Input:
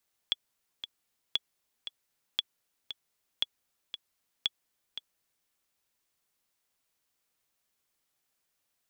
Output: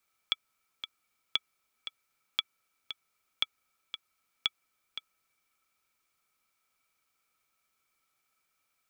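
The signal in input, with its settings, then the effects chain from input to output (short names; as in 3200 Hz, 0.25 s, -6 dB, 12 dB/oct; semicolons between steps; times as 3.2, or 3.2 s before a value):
metronome 116 bpm, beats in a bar 2, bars 5, 3380 Hz, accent 11 dB -13.5 dBFS
small resonant body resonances 1300/2300 Hz, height 18 dB, ringing for 45 ms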